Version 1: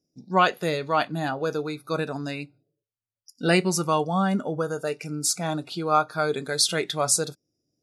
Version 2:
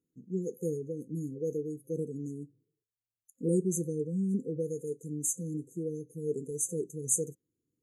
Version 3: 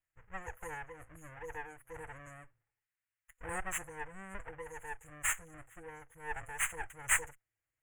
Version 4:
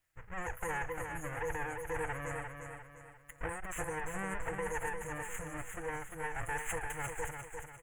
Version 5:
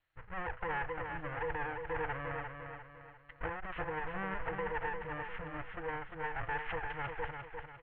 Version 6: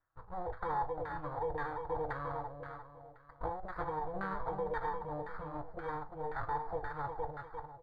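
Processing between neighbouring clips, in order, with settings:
brick-wall band-stop 520–6,100 Hz; level −5.5 dB
lower of the sound and its delayed copy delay 6.2 ms; drawn EQ curve 110 Hz 0 dB, 160 Hz −24 dB, 330 Hz −22 dB, 1,900 Hz +14 dB, 3,000 Hz +2 dB, 4,500 Hz −28 dB, 7,400 Hz −1 dB, 11,000 Hz −4 dB; level +1 dB
compressor whose output falls as the input rises −44 dBFS, ratio −1; on a send: repeating echo 349 ms, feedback 41%, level −6 dB; on the sum: level +5.5 dB
Chebyshev low-pass with heavy ripple 4,300 Hz, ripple 3 dB; level +2 dB
samples in bit-reversed order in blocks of 16 samples; tuned comb filter 50 Hz, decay 0.2 s, harmonics all, mix 60%; auto-filter low-pass saw down 1.9 Hz 590–1,600 Hz; level +2 dB

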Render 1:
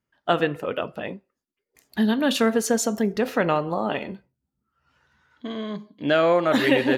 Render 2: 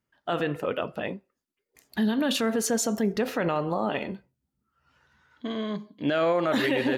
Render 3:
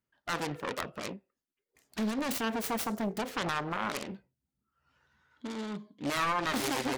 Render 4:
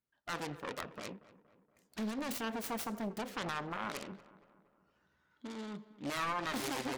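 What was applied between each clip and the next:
brickwall limiter −16.5 dBFS, peak gain reduction 10 dB
phase distortion by the signal itself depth 0.58 ms; level −6 dB
feedback echo with a low-pass in the loop 235 ms, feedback 54%, low-pass 2,200 Hz, level −17.5 dB; level −6 dB

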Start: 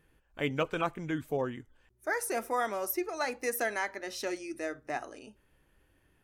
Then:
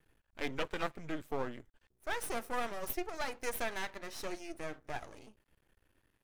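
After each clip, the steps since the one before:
half-wave rectification
level −1 dB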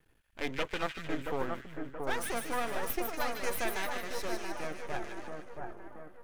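echo with a time of its own for lows and highs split 1,600 Hz, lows 677 ms, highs 151 ms, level −4 dB
level +2 dB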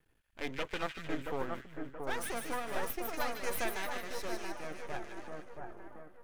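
amplitude modulation by smooth noise, depth 55%

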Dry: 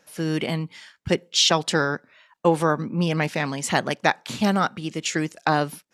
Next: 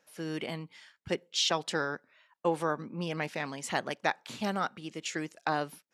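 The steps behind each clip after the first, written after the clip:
bass and treble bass −6 dB, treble −2 dB
level −9 dB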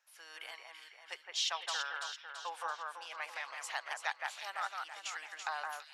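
high-pass filter 840 Hz 24 dB per octave
delay that swaps between a low-pass and a high-pass 167 ms, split 2,400 Hz, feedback 72%, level −3 dB
level −5.5 dB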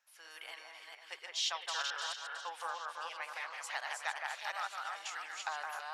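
delay that plays each chunk backwards 238 ms, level −3 dB
level −1.5 dB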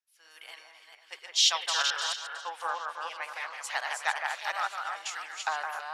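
multiband upward and downward expander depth 70%
level +7 dB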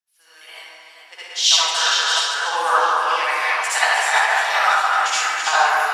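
speech leveller within 4 dB 0.5 s
convolution reverb RT60 1.0 s, pre-delay 59 ms, DRR −9.5 dB
level +4 dB

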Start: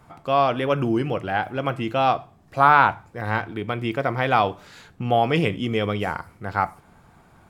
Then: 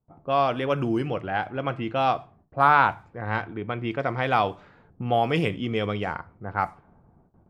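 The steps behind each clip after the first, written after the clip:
low-pass that shuts in the quiet parts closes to 500 Hz, open at −17 dBFS
noise gate with hold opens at −45 dBFS
level −3 dB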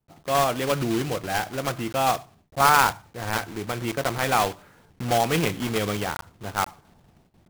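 one scale factor per block 3 bits

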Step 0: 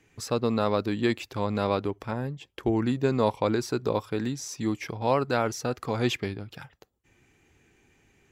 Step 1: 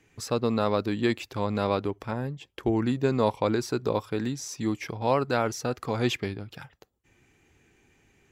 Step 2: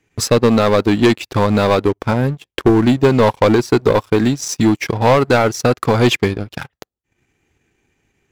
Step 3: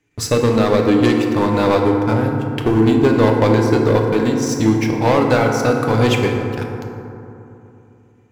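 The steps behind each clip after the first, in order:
no processing that can be heard
leveller curve on the samples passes 3; transient designer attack +3 dB, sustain −10 dB; level +4.5 dB
feedback delay network reverb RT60 2.9 s, low-frequency decay 1.2×, high-frequency decay 0.35×, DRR 1 dB; level −4.5 dB

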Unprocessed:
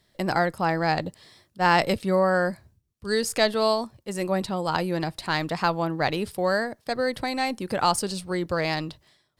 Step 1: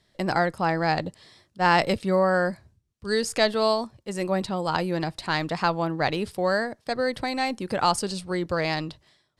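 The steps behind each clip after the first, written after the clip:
low-pass filter 9,200 Hz 12 dB per octave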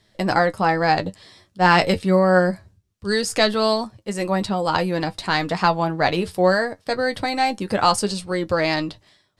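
flanger 0.24 Hz, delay 9.3 ms, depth 1.9 ms, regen +43%
level +9 dB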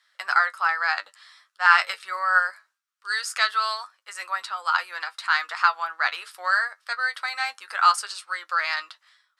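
four-pole ladder high-pass 1,200 Hz, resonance 65%
level +6 dB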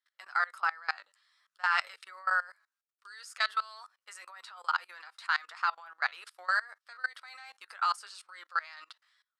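output level in coarse steps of 22 dB
level −4.5 dB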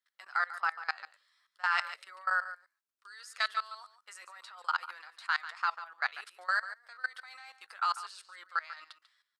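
single-tap delay 143 ms −13.5 dB
level −1.5 dB

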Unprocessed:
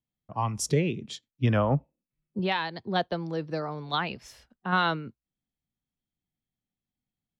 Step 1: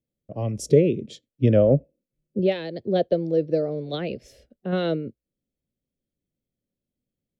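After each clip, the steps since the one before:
drawn EQ curve 180 Hz 0 dB, 570 Hz +9 dB, 930 Hz −23 dB, 2,100 Hz −8 dB
level +4 dB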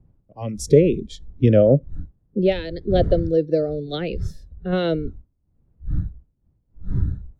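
wind on the microphone 93 Hz −32 dBFS
noise reduction from a noise print of the clip's start 16 dB
level +3 dB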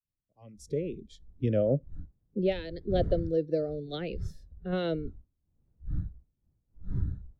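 fade in at the beginning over 2.27 s
level −9 dB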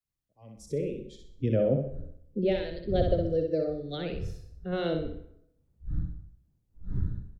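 on a send: repeating echo 63 ms, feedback 31%, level −5 dB
on the sum: dense smooth reverb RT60 0.71 s, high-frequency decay 0.75×, pre-delay 80 ms, DRR 14.5 dB

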